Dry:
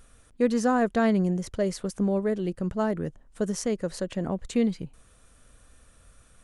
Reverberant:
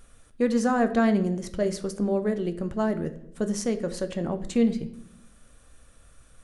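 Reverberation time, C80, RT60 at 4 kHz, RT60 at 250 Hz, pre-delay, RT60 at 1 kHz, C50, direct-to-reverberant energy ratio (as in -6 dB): 0.70 s, 17.0 dB, 0.55 s, 1.1 s, 3 ms, 0.55 s, 14.0 dB, 8.5 dB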